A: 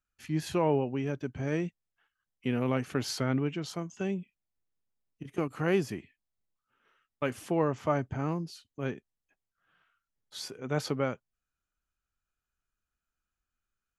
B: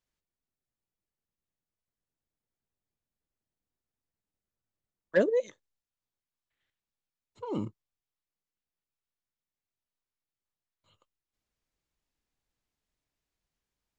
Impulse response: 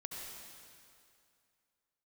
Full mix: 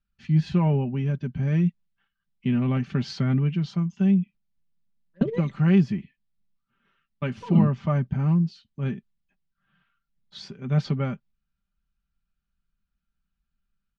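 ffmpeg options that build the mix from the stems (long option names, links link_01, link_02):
-filter_complex "[0:a]aemphasis=mode=production:type=50kf,volume=-2.5dB,asplit=2[link_01][link_02];[1:a]volume=0dB[link_03];[link_02]apad=whole_len=616822[link_04];[link_03][link_04]sidechaingate=range=-36dB:threshold=-58dB:ratio=16:detection=peak[link_05];[link_01][link_05]amix=inputs=2:normalize=0,lowpass=frequency=4300:width=0.5412,lowpass=frequency=4300:width=1.3066,lowshelf=frequency=280:width_type=q:width=1.5:gain=11.5,aecho=1:1:5.1:0.56"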